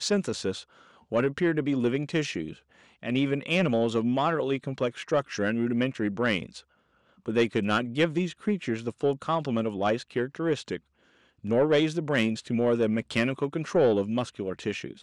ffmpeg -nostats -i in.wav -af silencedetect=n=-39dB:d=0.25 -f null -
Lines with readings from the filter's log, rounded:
silence_start: 0.62
silence_end: 1.12 | silence_duration: 0.50
silence_start: 2.53
silence_end: 3.03 | silence_duration: 0.50
silence_start: 6.59
silence_end: 7.26 | silence_duration: 0.66
silence_start: 10.77
silence_end: 11.44 | silence_duration: 0.67